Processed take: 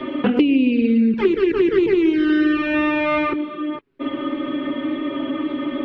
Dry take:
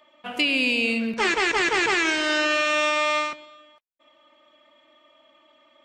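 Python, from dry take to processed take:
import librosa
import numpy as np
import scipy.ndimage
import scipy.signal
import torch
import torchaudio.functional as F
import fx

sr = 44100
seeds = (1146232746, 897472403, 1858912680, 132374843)

y = fx.low_shelf_res(x, sr, hz=500.0, db=10.0, q=3.0)
y = fx.rider(y, sr, range_db=5, speed_s=2.0)
y = fx.env_flanger(y, sr, rest_ms=7.6, full_db=-9.5)
y = fx.air_absorb(y, sr, metres=390.0)
y = fx.band_squash(y, sr, depth_pct=100)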